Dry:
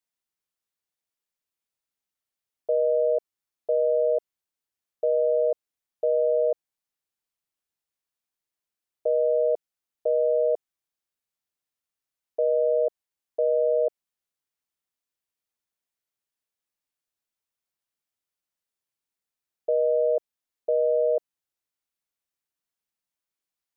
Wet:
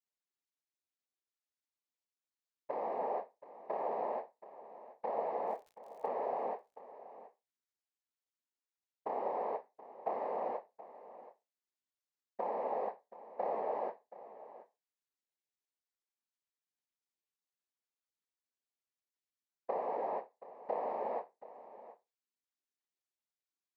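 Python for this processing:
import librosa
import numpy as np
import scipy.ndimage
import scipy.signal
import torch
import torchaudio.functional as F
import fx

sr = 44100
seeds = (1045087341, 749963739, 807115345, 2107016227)

y = fx.stiff_resonator(x, sr, f0_hz=310.0, decay_s=0.26, stiffness=0.03)
y = fx.noise_vocoder(y, sr, seeds[0], bands=6)
y = fx.dmg_crackle(y, sr, seeds[1], per_s=88.0, level_db=-59.0, at=(5.41, 6.06), fade=0.02)
y = y + 10.0 ** (-16.0 / 20.0) * np.pad(y, (int(727 * sr / 1000.0), 0))[:len(y)]
y = y * librosa.db_to_amplitude(5.5)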